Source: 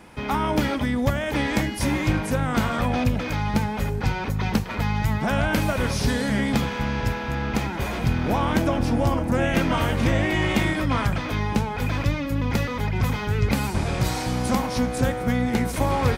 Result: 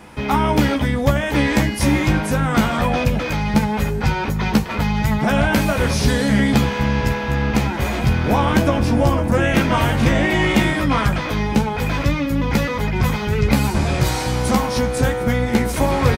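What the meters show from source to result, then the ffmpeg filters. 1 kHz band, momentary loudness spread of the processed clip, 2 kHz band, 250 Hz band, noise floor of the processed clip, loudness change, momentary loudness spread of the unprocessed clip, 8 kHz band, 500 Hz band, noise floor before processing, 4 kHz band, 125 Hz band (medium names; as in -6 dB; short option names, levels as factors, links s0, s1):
+5.0 dB, 4 LU, +5.5 dB, +5.5 dB, -24 dBFS, +5.5 dB, 4 LU, +5.5 dB, +6.0 dB, -30 dBFS, +5.5 dB, +5.0 dB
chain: -filter_complex "[0:a]asplit=2[s0][s1];[s1]adelay=14,volume=0.531[s2];[s0][s2]amix=inputs=2:normalize=0,volume=1.68"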